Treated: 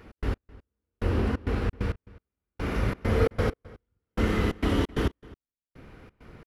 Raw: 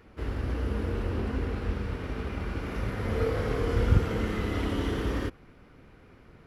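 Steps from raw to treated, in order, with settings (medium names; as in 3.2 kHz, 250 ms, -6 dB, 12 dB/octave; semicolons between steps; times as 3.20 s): trance gate "x.x......xxx.x" 133 bpm -60 dB; echo from a far wall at 45 m, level -21 dB; trim +5 dB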